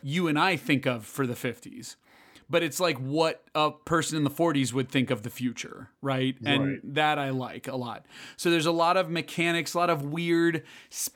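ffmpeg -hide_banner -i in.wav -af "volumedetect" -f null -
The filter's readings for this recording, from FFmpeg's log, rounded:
mean_volume: -27.8 dB
max_volume: -10.0 dB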